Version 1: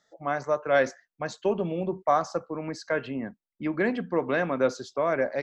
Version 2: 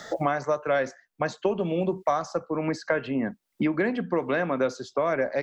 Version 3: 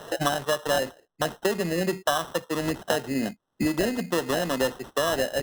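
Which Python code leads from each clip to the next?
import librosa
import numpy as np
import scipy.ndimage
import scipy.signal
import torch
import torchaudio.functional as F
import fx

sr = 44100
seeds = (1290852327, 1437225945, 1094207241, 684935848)

y1 = fx.band_squash(x, sr, depth_pct=100)
y2 = fx.sample_hold(y1, sr, seeds[0], rate_hz=2300.0, jitter_pct=0)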